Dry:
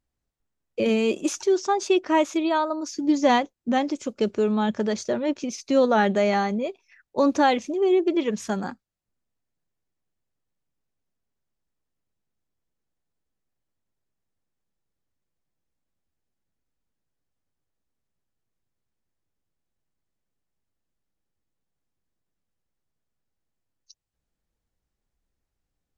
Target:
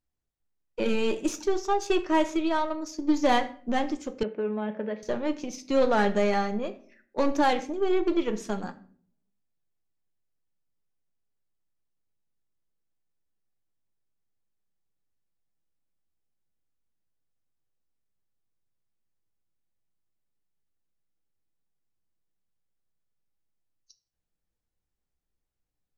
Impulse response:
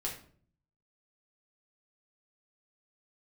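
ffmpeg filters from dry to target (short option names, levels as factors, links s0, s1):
-filter_complex "[0:a]aeval=exprs='0.398*(cos(1*acos(clip(val(0)/0.398,-1,1)))-cos(1*PI/2))+0.02*(cos(3*acos(clip(val(0)/0.398,-1,1)))-cos(3*PI/2))+0.0178*(cos(6*acos(clip(val(0)/0.398,-1,1)))-cos(6*PI/2))+0.0178*(cos(7*acos(clip(val(0)/0.398,-1,1)))-cos(7*PI/2))':c=same,asplit=2[s0][s1];[1:a]atrim=start_sample=2205[s2];[s1][s2]afir=irnorm=-1:irlink=0,volume=0.473[s3];[s0][s3]amix=inputs=2:normalize=0,asoftclip=type=tanh:threshold=0.299,asettb=1/sr,asplit=3[s4][s5][s6];[s4]atrim=end=4.234[s7];[s5]atrim=start=4.23:end=5.03,asetpts=PTS-STARTPTS,afade=t=in:d=0.004:c=qsin,afade=t=out:st=0.796:d=0.004:c=qsin,highpass=260,equalizer=f=390:t=q:w=4:g=-7,equalizer=f=560:t=q:w=4:g=6,equalizer=f=850:t=q:w=4:g=-4,equalizer=f=1200:t=q:w=4:g=-8,equalizer=f=1900:t=q:w=4:g=-3,lowpass=f=2400:w=0.5412,lowpass=f=2400:w=1.3066[s8];[s6]atrim=start=5.026[s9];[s7][s8]acrossfade=d=0.004:c1=hsin:c2=qsin[s10];[s10][s9]acrossfade=d=0.004:c1=qsin:c2=hsin,volume=0.668"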